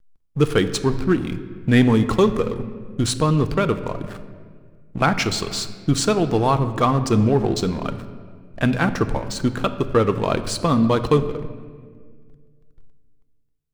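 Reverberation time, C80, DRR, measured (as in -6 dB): 1.8 s, 13.5 dB, 9.5 dB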